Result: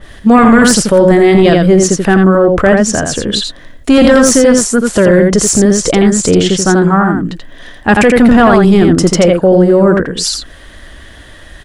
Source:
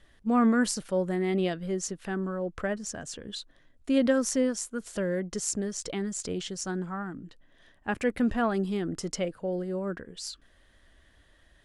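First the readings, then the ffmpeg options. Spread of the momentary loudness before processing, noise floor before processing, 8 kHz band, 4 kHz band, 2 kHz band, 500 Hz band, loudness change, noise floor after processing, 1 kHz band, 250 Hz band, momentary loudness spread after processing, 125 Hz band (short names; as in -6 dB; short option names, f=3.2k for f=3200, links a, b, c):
14 LU, -62 dBFS, +20.5 dB, +22.0 dB, +22.0 dB, +22.5 dB, +21.5 dB, -35 dBFS, +22.0 dB, +21.0 dB, 9 LU, +23.5 dB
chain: -filter_complex "[0:a]asplit=2[a][b];[b]aecho=0:1:84:0.562[c];[a][c]amix=inputs=2:normalize=0,acontrast=87,apsyclip=19.5dB,adynamicequalizer=threshold=0.0708:dfrequency=1900:dqfactor=0.7:tfrequency=1900:tqfactor=0.7:attack=5:release=100:ratio=0.375:range=2.5:mode=cutabove:tftype=highshelf,volume=-1.5dB"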